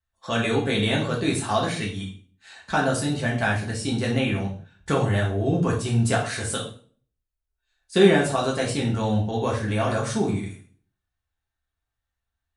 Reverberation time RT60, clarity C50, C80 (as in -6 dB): 0.40 s, 6.5 dB, 11.5 dB